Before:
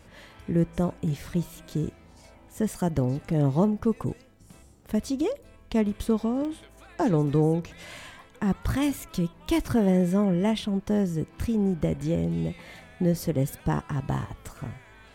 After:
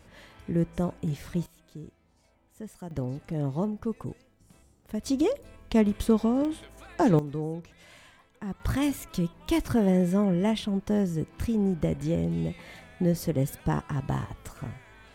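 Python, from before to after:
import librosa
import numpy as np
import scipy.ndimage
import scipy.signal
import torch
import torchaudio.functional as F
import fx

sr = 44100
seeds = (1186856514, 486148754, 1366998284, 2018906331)

y = fx.gain(x, sr, db=fx.steps((0.0, -2.5), (1.46, -14.0), (2.91, -6.5), (5.06, 2.0), (7.19, -10.0), (8.6, -1.0)))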